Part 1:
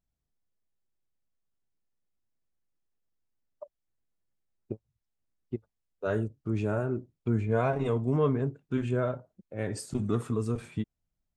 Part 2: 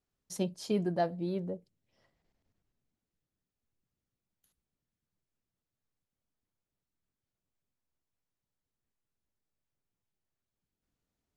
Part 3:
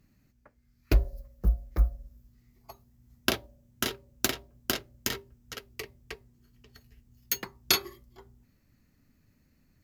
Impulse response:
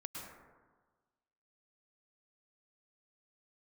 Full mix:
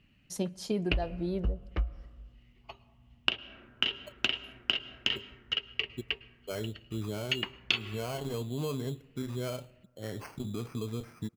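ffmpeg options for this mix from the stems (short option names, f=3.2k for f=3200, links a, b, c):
-filter_complex "[0:a]alimiter=limit=-20.5dB:level=0:latency=1:release=136,acrusher=samples=12:mix=1:aa=0.000001,adelay=450,volume=-5.5dB,asplit=2[a][b];[b]volume=-22dB[c];[1:a]volume=1.5dB,asplit=2[d][e];[e]volume=-24dB[f];[2:a]lowpass=f=2.9k:t=q:w=13,volume=-1.5dB,asplit=2[g][h];[h]volume=-14dB[i];[3:a]atrim=start_sample=2205[j];[c][f][i]amix=inputs=3:normalize=0[k];[k][j]afir=irnorm=-1:irlink=0[l];[a][d][g][l]amix=inputs=4:normalize=0,acompressor=threshold=-26dB:ratio=5"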